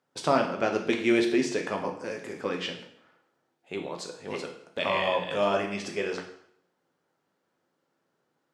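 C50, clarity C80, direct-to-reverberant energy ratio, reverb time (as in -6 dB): 8.0 dB, 11.0 dB, 2.5 dB, 0.65 s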